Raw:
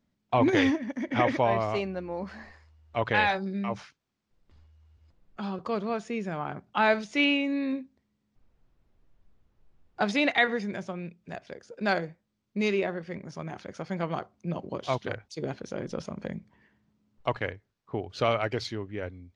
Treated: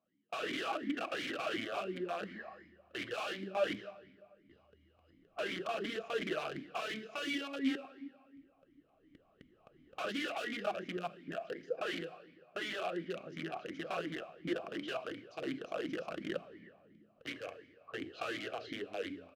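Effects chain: recorder AGC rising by 5.8 dB/s; treble shelf 2.2 kHz -5.5 dB; comb 1 ms, depth 31%; in parallel at +2.5 dB: compression 4:1, threshold -37 dBFS, peak gain reduction 15.5 dB; 13.99–14.64 s: on the sum: hysteresis with a dead band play -29.5 dBFS; flutter echo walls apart 5.9 m, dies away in 0.21 s; integer overflow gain 21 dB; simulated room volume 3600 m³, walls mixed, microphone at 0.64 m; crackling interface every 0.26 s, samples 128, zero, from 0.31 s; talking filter a-i 2.8 Hz; trim +1 dB

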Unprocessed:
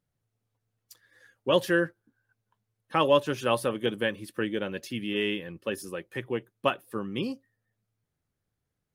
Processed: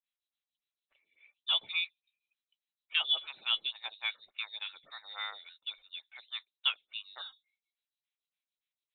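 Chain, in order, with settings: three-band isolator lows -16 dB, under 490 Hz, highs -20 dB, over 2.2 kHz; frequency inversion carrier 4 kHz; lamp-driven phase shifter 3.5 Hz

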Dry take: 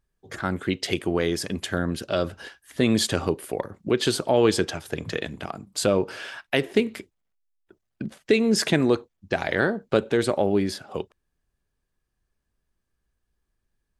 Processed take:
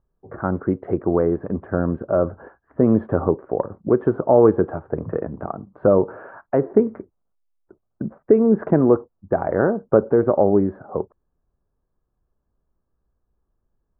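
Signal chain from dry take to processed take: steep low-pass 1.3 kHz 36 dB/octave; peaking EQ 540 Hz +2.5 dB; trim +4.5 dB

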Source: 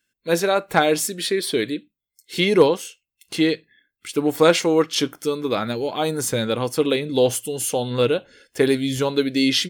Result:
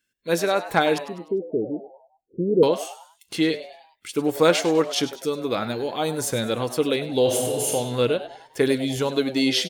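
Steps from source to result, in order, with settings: 0.98–2.63 s: steep low-pass 560 Hz 72 dB/octave; frequency-shifting echo 100 ms, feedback 43%, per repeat +120 Hz, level -14 dB; 7.22–7.72 s: reverb throw, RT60 1.5 s, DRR -1 dB; trim -2.5 dB

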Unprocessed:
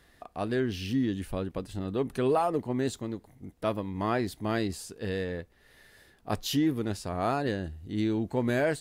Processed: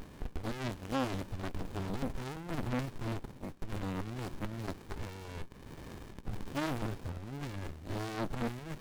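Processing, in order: pre-emphasis filter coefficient 0.8; overdrive pedal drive 31 dB, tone 4.8 kHz, clips at -24 dBFS; sliding maximum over 65 samples; trim +5 dB

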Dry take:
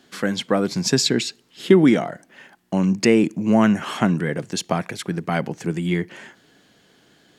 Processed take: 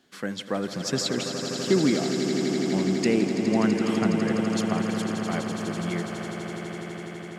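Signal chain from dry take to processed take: echo with a slow build-up 83 ms, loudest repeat 8, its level -10.5 dB; trim -8.5 dB

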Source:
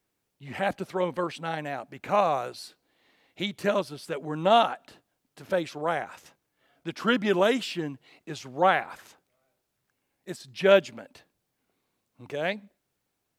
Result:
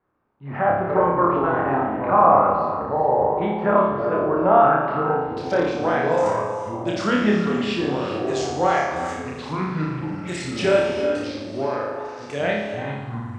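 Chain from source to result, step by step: peak limiter -15 dBFS, peak gain reduction 9 dB; low-pass that closes with the level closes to 2.3 kHz, closed at -25 dBFS; spectral selection erased 7.31–7.57 s, 250–5400 Hz; low-pass sweep 1.2 kHz -> 7.9 kHz, 4.54–5.74 s; flutter echo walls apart 4.9 m, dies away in 0.78 s; ever faster or slower copies 86 ms, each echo -5 st, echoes 3, each echo -6 dB; on a send at -8 dB: brick-wall FIR high-pass 160 Hz + reverberation, pre-delay 3 ms; on the sum: trim +3.5 dB

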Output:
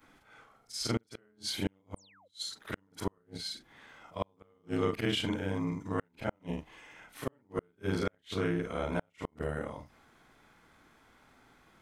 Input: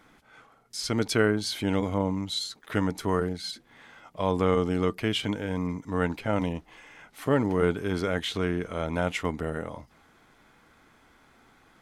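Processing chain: short-time spectra conjugated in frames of 104 ms; painted sound fall, 1.96–2.28 s, 460–9800 Hz -22 dBFS; inverted gate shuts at -18 dBFS, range -40 dB

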